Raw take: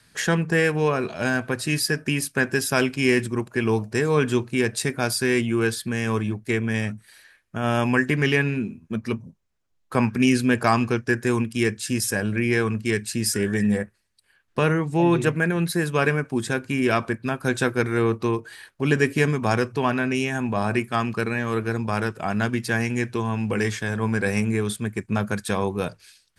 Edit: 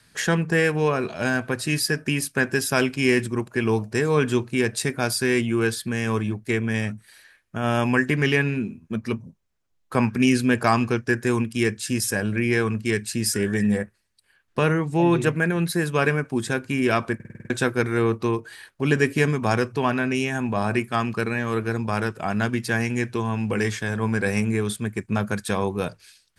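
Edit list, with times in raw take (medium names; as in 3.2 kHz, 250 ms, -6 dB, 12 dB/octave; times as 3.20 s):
17.15 s: stutter in place 0.05 s, 7 plays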